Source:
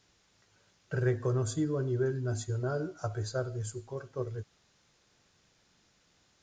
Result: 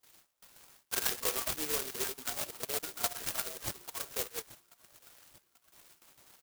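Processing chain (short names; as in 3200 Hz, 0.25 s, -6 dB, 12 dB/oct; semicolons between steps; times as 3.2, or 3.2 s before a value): random spectral dropouts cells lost 39%; gate with hold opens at -59 dBFS; HPF 830 Hz 12 dB/oct; high shelf 6300 Hz -7 dB; notch 5200 Hz; comb 4.3 ms, depth 57%; on a send: thin delay 0.837 s, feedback 49%, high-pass 1600 Hz, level -19.5 dB; on the sum: careless resampling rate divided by 6×, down none, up zero stuff; in parallel at +3 dB: compressor, threshold -39 dBFS, peak gain reduction 13 dB; on the sum: clock jitter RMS 0.12 ms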